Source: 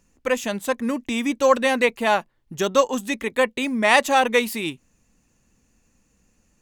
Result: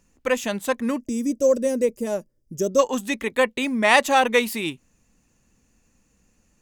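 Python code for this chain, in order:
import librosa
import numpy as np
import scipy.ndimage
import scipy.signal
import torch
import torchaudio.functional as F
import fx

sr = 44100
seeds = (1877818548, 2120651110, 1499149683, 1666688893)

y = fx.spec_box(x, sr, start_s=1.0, length_s=1.79, low_hz=640.0, high_hz=4700.0, gain_db=-19)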